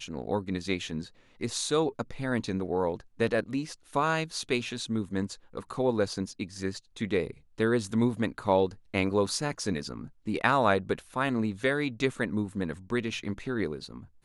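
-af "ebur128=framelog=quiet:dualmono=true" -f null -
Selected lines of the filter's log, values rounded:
Integrated loudness:
  I:         -27.1 LUFS
  Threshold: -37.3 LUFS
Loudness range:
  LRA:         3.3 LU
  Threshold: -46.9 LUFS
  LRA low:   -28.6 LUFS
  LRA high:  -25.3 LUFS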